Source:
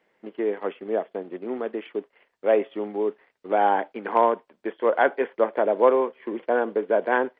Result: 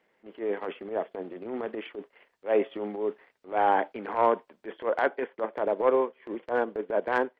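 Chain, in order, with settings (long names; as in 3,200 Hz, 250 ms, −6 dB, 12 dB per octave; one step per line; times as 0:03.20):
transient designer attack −12 dB, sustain +3 dB, from 0:04.92 sustain −5 dB
level −1.5 dB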